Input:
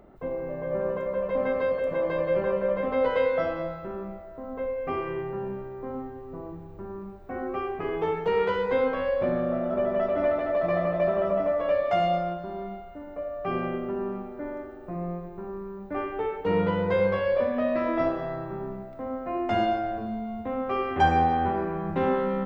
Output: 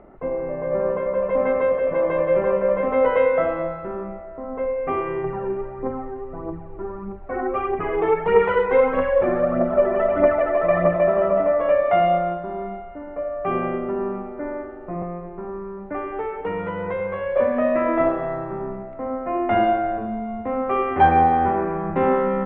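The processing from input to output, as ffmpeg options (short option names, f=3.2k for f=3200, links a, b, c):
-filter_complex "[0:a]asettb=1/sr,asplit=3[a][b][c];[a]atrim=end=5.244[d];[b]atrim=start=5.24:end=10.96,asetpts=PTS-STARTPTS,afade=t=in:d=0.004:c=qsin,afade=t=out:st=5.716:d=0.004:c=qsin,aphaser=in_gain=1:out_gain=1:delay=3:decay=0.5:speed=1.6:type=triangular[e];[c]atrim=start=10.956[f];[d][e]acrossfade=d=0.004:c1=hsin:c2=qsin[g];[g][f]acrossfade=d=0.004:c1=qsin:c2=hsin,asettb=1/sr,asplit=3[h][i][j];[h]atrim=end=15.024[k];[i]atrim=start=15.02:end=17.36,asetpts=PTS-STARTPTS,afade=t=in:d=0.004:c=qsin,afade=t=out:st=2.336:d=0.004:c=qsin,acrossover=split=85|870[l][m][n];[l]acompressor=threshold=-48dB:ratio=4[o];[m]acompressor=threshold=-33dB:ratio=4[p];[n]acompressor=threshold=-39dB:ratio=4[q];[o][p][q]amix=inputs=3:normalize=0[r];[j]atrim=start=17.356[s];[k][r]acrossfade=d=0.004:c1=hsin:c2=qsin[t];[t][s]acrossfade=d=0.004:c1=qsin:c2=hsin,lowpass=f=2.4k:w=0.5412,lowpass=f=2.4k:w=1.3066,equalizer=f=98:w=0.43:g=-5,bandreject=f=1.6k:w=23,volume=7dB"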